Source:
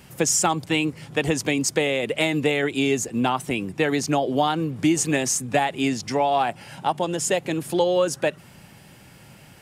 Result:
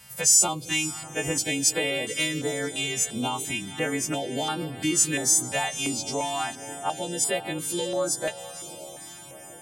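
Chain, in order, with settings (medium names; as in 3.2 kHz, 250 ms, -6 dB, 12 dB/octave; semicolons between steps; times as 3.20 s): partials quantised in pitch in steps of 2 st; echo that smears into a reverb 517 ms, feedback 68%, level -14.5 dB; step-sequenced notch 2.9 Hz 320–6300 Hz; trim -5.5 dB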